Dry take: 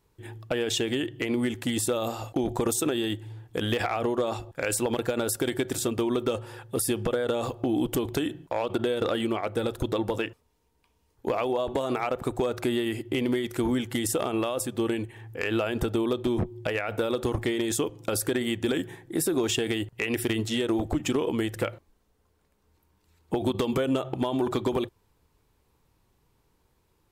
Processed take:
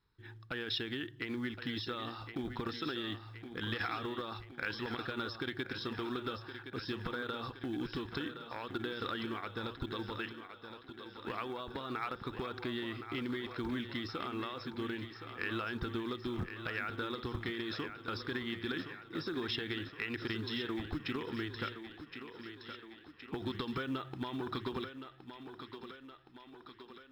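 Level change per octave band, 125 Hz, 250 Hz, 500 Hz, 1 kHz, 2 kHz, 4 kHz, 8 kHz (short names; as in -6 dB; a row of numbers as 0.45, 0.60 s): -10.0 dB, -11.5 dB, -15.0 dB, -8.0 dB, -5.0 dB, -6.5 dB, under -30 dB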